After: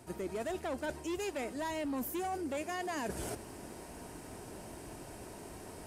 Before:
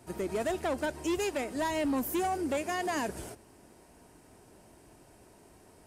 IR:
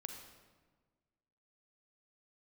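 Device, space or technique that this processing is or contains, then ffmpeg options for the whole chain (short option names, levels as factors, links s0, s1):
compression on the reversed sound: -af "areverse,acompressor=threshold=0.00447:ratio=5,areverse,volume=2.99"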